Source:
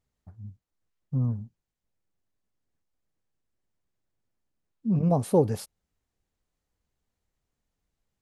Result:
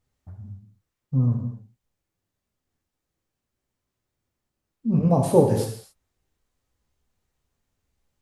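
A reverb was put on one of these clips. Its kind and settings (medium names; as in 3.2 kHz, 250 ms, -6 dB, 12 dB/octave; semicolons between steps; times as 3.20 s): gated-style reverb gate 300 ms falling, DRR 0 dB; trim +2.5 dB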